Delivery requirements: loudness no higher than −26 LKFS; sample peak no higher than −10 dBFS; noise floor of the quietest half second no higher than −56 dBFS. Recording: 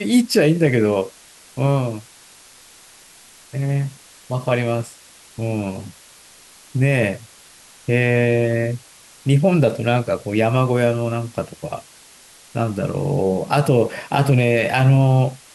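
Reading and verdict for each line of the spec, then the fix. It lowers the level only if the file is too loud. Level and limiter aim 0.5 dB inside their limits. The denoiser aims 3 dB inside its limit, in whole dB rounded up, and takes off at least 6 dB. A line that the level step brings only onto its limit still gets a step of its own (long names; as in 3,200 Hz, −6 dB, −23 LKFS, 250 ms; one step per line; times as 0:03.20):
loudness −19.0 LKFS: out of spec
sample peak −4.5 dBFS: out of spec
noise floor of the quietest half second −47 dBFS: out of spec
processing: broadband denoise 6 dB, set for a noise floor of −47 dBFS
level −7.5 dB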